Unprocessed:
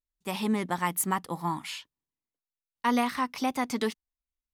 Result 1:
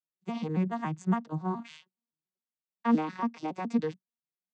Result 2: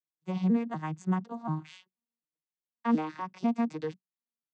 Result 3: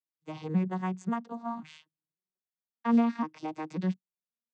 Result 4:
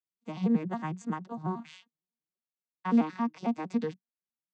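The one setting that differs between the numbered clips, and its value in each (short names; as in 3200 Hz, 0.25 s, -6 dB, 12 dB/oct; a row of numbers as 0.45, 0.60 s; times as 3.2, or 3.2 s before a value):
arpeggiated vocoder, a note every: 140, 245, 537, 91 ms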